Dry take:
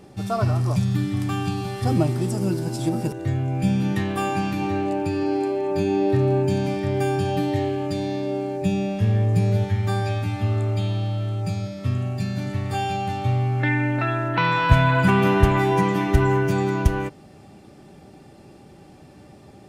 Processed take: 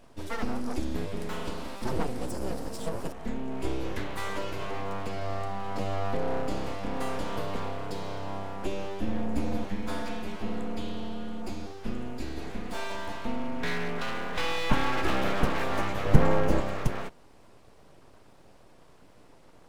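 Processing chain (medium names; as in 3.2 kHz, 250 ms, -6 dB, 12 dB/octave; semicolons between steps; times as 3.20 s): 16.05–16.60 s: bass shelf 380 Hz +10 dB; full-wave rectifier; trim -6.5 dB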